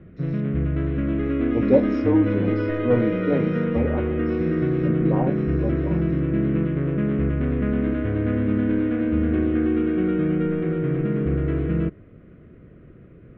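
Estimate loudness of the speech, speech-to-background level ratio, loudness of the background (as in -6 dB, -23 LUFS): -26.0 LUFS, -3.0 dB, -23.0 LUFS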